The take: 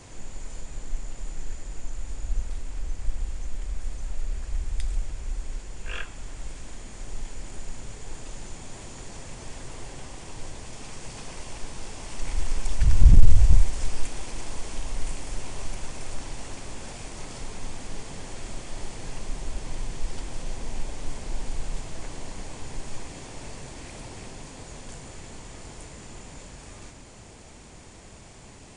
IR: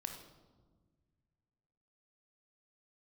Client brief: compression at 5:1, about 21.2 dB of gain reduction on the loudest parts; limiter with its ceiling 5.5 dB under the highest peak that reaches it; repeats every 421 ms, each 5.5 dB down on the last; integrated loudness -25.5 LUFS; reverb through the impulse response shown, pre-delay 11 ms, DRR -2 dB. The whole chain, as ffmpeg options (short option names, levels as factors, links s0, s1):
-filter_complex "[0:a]acompressor=threshold=0.0316:ratio=5,alimiter=level_in=1.41:limit=0.0631:level=0:latency=1,volume=0.708,aecho=1:1:421|842|1263|1684|2105|2526|2947:0.531|0.281|0.149|0.079|0.0419|0.0222|0.0118,asplit=2[s0][s1];[1:a]atrim=start_sample=2205,adelay=11[s2];[s1][s2]afir=irnorm=-1:irlink=0,volume=1.5[s3];[s0][s3]amix=inputs=2:normalize=0,volume=3.76"